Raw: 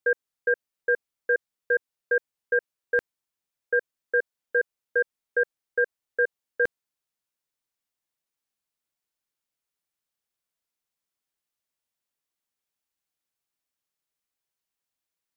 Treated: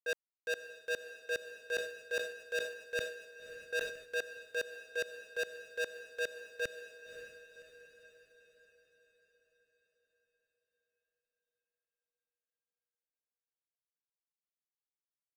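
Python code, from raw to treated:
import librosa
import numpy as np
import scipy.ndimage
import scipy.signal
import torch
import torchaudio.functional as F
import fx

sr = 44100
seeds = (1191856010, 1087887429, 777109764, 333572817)

y = scipy.signal.sosfilt(scipy.signal.butter(2, 51.0, 'highpass', fs=sr, output='sos'), x)
y = fx.leveller(y, sr, passes=3)
y = fx.transient(y, sr, attack_db=-10, sustain_db=8)
y = fx.power_curve(y, sr, exponent=2.0)
y = 10.0 ** (-33.0 / 20.0) * np.tanh(y / 10.0 ** (-33.0 / 20.0))
y = fx.echo_diffused(y, sr, ms=555, feedback_pct=50, wet_db=-10.5)
y = fx.sustainer(y, sr, db_per_s=89.0, at=(1.72, 4.18))
y = y * librosa.db_to_amplitude(2.0)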